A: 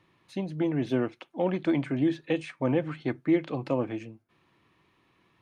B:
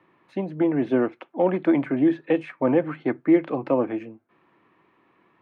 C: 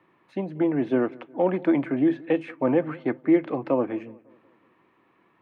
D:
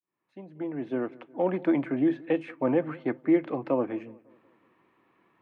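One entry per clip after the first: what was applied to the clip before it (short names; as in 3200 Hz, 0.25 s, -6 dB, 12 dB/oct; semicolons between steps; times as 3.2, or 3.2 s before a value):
three-band isolator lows -15 dB, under 190 Hz, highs -20 dB, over 2300 Hz; gain +7 dB
darkening echo 0.182 s, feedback 49%, low-pass 2400 Hz, level -22.5 dB; gain -1.5 dB
opening faded in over 1.59 s; gain -3 dB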